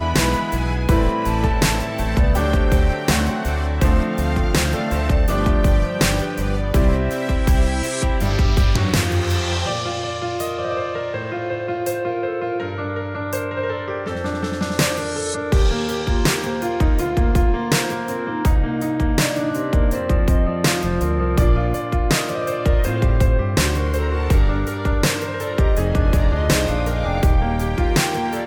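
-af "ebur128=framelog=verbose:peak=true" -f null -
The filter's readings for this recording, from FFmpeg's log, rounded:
Integrated loudness:
  I:         -20.0 LUFS
  Threshold: -30.0 LUFS
Loudness range:
  LRA:         4.5 LU
  Threshold: -40.1 LUFS
  LRA low:   -23.6 LUFS
  LRA high:  -19.2 LUFS
True peak:
  Peak:       -6.1 dBFS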